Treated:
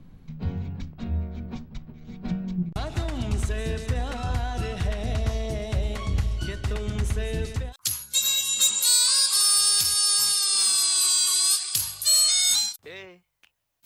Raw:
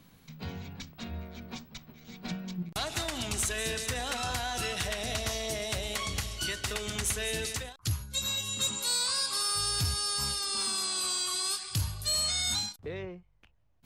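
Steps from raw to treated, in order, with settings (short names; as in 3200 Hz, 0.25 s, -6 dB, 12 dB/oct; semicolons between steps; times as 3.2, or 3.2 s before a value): tilt -3.5 dB/oct, from 7.72 s +4 dB/oct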